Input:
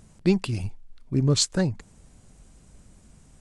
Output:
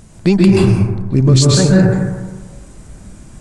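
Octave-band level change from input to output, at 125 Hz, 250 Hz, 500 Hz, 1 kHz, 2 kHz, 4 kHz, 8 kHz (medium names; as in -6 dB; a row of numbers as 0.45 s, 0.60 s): +15.0 dB, +14.5 dB, +14.0 dB, +14.5 dB, +13.0 dB, +8.5 dB, +9.0 dB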